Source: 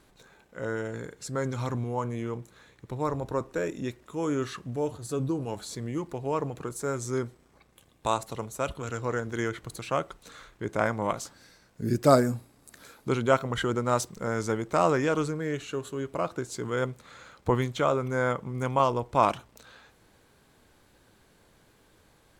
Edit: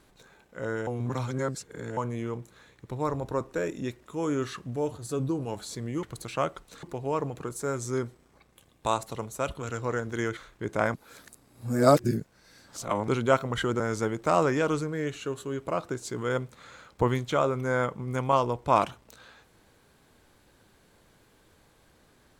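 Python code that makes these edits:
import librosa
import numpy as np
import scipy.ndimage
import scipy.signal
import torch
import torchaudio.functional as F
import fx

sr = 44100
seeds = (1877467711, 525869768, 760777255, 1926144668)

y = fx.edit(x, sr, fx.reverse_span(start_s=0.87, length_s=1.1),
    fx.move(start_s=9.57, length_s=0.8, to_s=6.03),
    fx.reverse_span(start_s=10.94, length_s=2.14),
    fx.cut(start_s=13.8, length_s=0.47), tone=tone)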